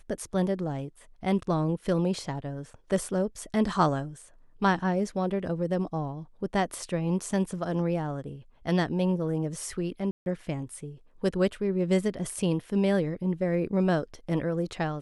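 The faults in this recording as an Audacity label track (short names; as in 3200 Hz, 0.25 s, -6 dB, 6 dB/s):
10.110000	10.260000	gap 0.151 s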